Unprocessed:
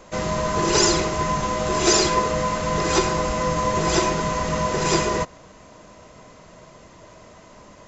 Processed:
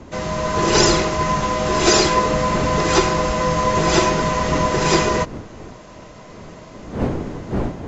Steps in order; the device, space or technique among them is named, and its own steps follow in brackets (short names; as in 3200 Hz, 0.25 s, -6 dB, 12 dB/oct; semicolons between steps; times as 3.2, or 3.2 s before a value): LPF 6600 Hz 12 dB/oct; smartphone video outdoors (wind noise 350 Hz -34 dBFS; AGC gain up to 5 dB; AAC 64 kbps 44100 Hz)